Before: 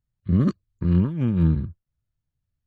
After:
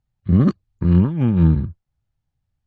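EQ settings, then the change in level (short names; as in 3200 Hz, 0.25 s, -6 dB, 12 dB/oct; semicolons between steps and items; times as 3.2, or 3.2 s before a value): air absorption 68 m; bell 800 Hz +10 dB 0.26 oct; +5.0 dB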